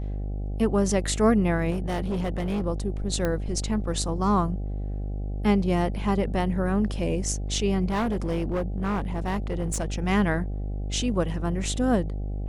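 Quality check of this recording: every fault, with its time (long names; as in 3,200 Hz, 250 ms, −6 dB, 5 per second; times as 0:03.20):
mains buzz 50 Hz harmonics 16 −30 dBFS
0:01.70–0:02.66: clipping −23.5 dBFS
0:03.25: click −14 dBFS
0:07.89–0:09.92: clipping −22.5 dBFS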